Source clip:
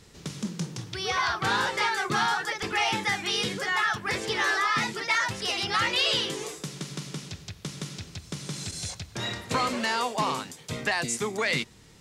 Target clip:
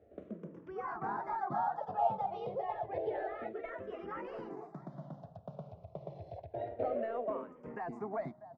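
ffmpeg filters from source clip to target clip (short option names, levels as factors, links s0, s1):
-filter_complex "[0:a]highpass=f=60:w=0.5412,highpass=f=60:w=1.3066,lowshelf=f=400:g=-6,atempo=1.4,volume=11.9,asoftclip=hard,volume=0.0841,lowpass=f=660:t=q:w=6.5,aecho=1:1:643:0.1,asplit=2[s0][s1];[s1]afreqshift=-0.29[s2];[s0][s2]amix=inputs=2:normalize=1,volume=0.596"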